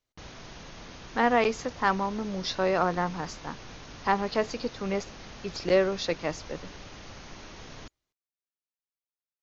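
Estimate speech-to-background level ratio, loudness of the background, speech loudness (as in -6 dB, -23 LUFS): 16.5 dB, -45.0 LUFS, -28.5 LUFS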